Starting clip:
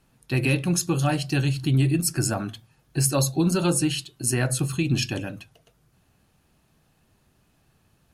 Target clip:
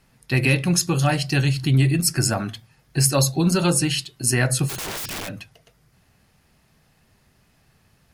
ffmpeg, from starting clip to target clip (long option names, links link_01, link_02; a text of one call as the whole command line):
ffmpeg -i in.wav -filter_complex "[0:a]equalizer=frequency=315:width_type=o:width=0.33:gain=-5,equalizer=frequency=2000:width_type=o:width=0.33:gain=7,equalizer=frequency=5000:width_type=o:width=0.33:gain=5,asplit=3[link_01][link_02][link_03];[link_01]afade=type=out:start_time=4.68:duration=0.02[link_04];[link_02]aeval=exprs='(mod(28.2*val(0)+1,2)-1)/28.2':channel_layout=same,afade=type=in:start_time=4.68:duration=0.02,afade=type=out:start_time=5.27:duration=0.02[link_05];[link_03]afade=type=in:start_time=5.27:duration=0.02[link_06];[link_04][link_05][link_06]amix=inputs=3:normalize=0,volume=3.5dB" out.wav